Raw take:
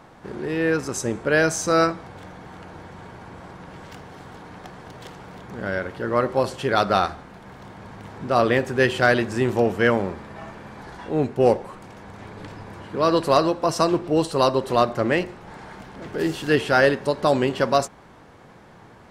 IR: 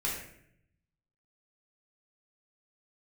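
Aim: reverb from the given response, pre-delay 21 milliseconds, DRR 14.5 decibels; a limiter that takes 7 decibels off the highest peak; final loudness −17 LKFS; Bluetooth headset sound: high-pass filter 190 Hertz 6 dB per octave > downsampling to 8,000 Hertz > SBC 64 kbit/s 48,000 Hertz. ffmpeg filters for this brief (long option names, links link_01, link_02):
-filter_complex "[0:a]alimiter=limit=-12.5dB:level=0:latency=1,asplit=2[link_01][link_02];[1:a]atrim=start_sample=2205,adelay=21[link_03];[link_02][link_03]afir=irnorm=-1:irlink=0,volume=-20dB[link_04];[link_01][link_04]amix=inputs=2:normalize=0,highpass=frequency=190:poles=1,aresample=8000,aresample=44100,volume=8.5dB" -ar 48000 -c:a sbc -b:a 64k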